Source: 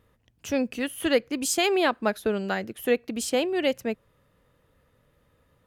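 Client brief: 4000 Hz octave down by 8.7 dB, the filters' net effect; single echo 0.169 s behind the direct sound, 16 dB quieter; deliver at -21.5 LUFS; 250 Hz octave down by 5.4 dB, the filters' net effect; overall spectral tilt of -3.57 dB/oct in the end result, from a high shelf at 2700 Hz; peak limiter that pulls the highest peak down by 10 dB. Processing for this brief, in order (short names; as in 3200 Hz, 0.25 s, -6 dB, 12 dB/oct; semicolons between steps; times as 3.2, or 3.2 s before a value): bell 250 Hz -7 dB; high shelf 2700 Hz -6.5 dB; bell 4000 Hz -7 dB; limiter -22 dBFS; echo 0.169 s -16 dB; gain +11.5 dB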